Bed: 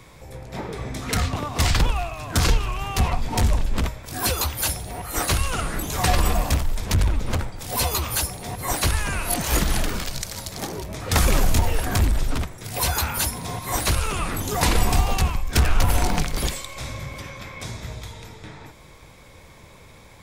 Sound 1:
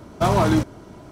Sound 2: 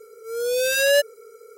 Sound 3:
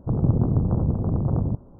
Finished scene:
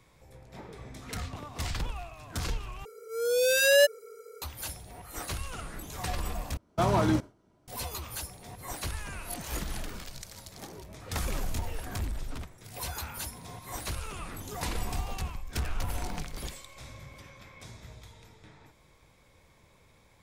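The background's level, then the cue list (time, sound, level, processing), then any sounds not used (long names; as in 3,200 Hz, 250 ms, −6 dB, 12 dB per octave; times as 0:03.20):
bed −14 dB
0:02.85: overwrite with 2 −2.5 dB
0:06.57: overwrite with 1 −7 dB + noise gate with hold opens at −29 dBFS, closes at −34 dBFS, hold 17 ms, range −17 dB
not used: 3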